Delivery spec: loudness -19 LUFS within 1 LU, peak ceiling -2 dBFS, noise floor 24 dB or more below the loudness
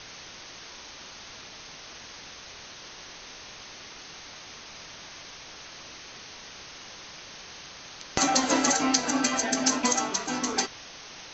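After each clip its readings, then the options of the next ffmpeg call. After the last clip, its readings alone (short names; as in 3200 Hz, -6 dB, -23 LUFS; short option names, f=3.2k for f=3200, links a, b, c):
noise floor -45 dBFS; noise floor target -49 dBFS; loudness -25.0 LUFS; peak -3.5 dBFS; loudness target -19.0 LUFS
-> -af "afftdn=nr=6:nf=-45"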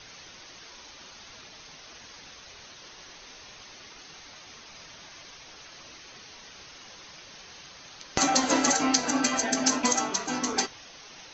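noise floor -49 dBFS; loudness -25.0 LUFS; peak -4.0 dBFS; loudness target -19.0 LUFS
-> -af "volume=6dB,alimiter=limit=-2dB:level=0:latency=1"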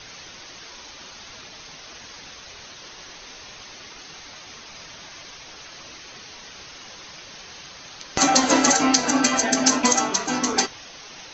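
loudness -19.0 LUFS; peak -2.0 dBFS; noise floor -43 dBFS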